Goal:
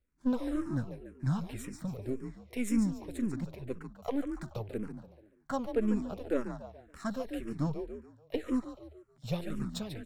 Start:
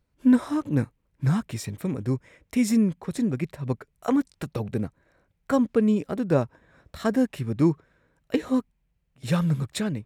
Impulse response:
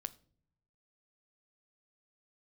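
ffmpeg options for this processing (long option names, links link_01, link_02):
-filter_complex "[0:a]aeval=exprs='if(lt(val(0),0),0.447*val(0),val(0))':channel_layout=same,asplit=5[link_01][link_02][link_03][link_04][link_05];[link_02]adelay=143,afreqshift=37,volume=-8.5dB[link_06];[link_03]adelay=286,afreqshift=74,volume=-16.5dB[link_07];[link_04]adelay=429,afreqshift=111,volume=-24.4dB[link_08];[link_05]adelay=572,afreqshift=148,volume=-32.4dB[link_09];[link_01][link_06][link_07][link_08][link_09]amix=inputs=5:normalize=0,asplit=2[link_10][link_11];[link_11]afreqshift=-1.9[link_12];[link_10][link_12]amix=inputs=2:normalize=1,volume=-4.5dB"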